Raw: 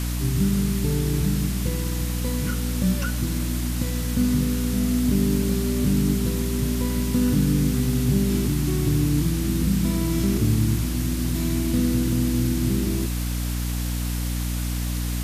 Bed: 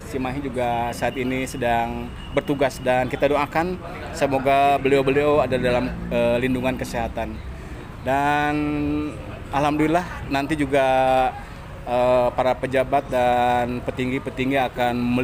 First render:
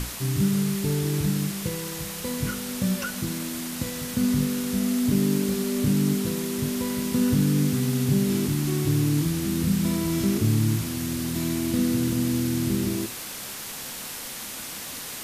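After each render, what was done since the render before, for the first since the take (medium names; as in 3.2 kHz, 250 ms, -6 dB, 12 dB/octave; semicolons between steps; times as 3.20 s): hum notches 60/120/180/240/300/360 Hz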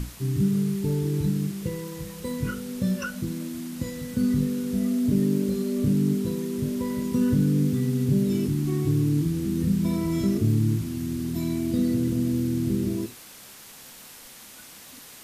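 noise print and reduce 10 dB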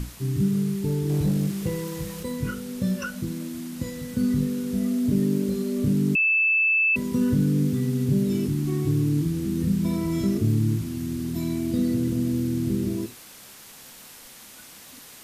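1.09–2.23 s: waveshaping leveller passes 1; 6.15–6.96 s: bleep 2.63 kHz -17.5 dBFS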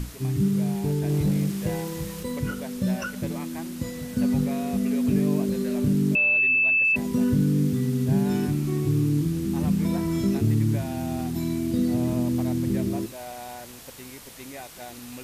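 add bed -20 dB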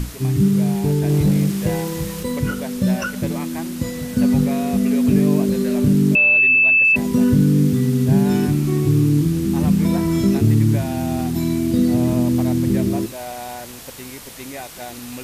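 trim +7 dB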